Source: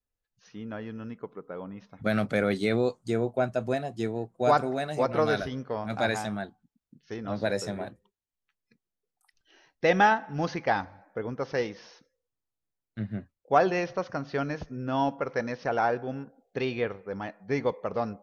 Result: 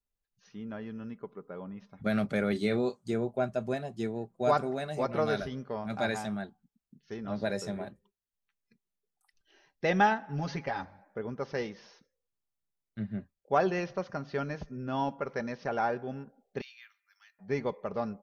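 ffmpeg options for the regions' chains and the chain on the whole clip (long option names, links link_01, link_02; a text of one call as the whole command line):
ffmpeg -i in.wav -filter_complex "[0:a]asettb=1/sr,asplit=3[link_01][link_02][link_03];[link_01]atrim=end=2.524[link_04];[link_02]atrim=start=2.52:end=3.14,asetpts=PTS-STARTPTS,afade=type=in:duration=0.004:curve=qsin,afade=type=out:start_time=0.616:duration=0.004:curve=qsin,highpass=41,asplit=2[link_05][link_06];[link_06]adelay=29,volume=-10dB[link_07];[link_05][link_07]amix=inputs=2:normalize=0,atrim=end_sample=27342[link_08];[link_03]atrim=start=3.136[link_09];[link_04][link_08]acrossfade=duration=0.004:curve1=hsin:curve2=qsin[link_10];[link_10][link_09]acrossfade=duration=0.004:curve1=qsin:curve2=hsin,asettb=1/sr,asplit=3[link_11][link_12][link_13];[link_11]atrim=end=10.284[link_14];[link_12]atrim=start=10.28:end=10.83,asetpts=PTS-STARTPTS,afade=type=in:duration=0.004:curve=qsin,afade=type=out:start_time=0.546:duration=0.004:curve=qsin,aecho=1:1:7.2:0.84,atrim=end_sample=24255,acompressor=threshold=-26dB:ratio=3:attack=3.2:release=140:knee=1:detection=peak[link_15];[link_13]atrim=start=10.826[link_16];[link_14][link_15]acrossfade=duration=0.004:curve1=hsin:curve2=qsin[link_17];[link_17][link_16]acrossfade=duration=0.004:curve1=qsin:curve2=hsin,asettb=1/sr,asplit=3[link_18][link_19][link_20];[link_18]atrim=end=16.614[link_21];[link_19]atrim=start=16.61:end=17.39,asetpts=PTS-STARTPTS,afade=type=in:duration=0.004:curve=qsin,afade=type=out:start_time=0.776:duration=0.004:curve=qsin,highpass=frequency=1400:width=0.5412,highpass=frequency=1400:width=1.3066,aderivative[link_22];[link_20]atrim=start=17.386[link_23];[link_21][link_22]acrossfade=duration=0.004:curve1=hsin:curve2=qsin[link_24];[link_24][link_23]acrossfade=duration=0.004:curve1=qsin:curve2=hsin,lowshelf=frequency=240:gain=3.5,aecho=1:1:5:0.33,volume=-5dB" out.wav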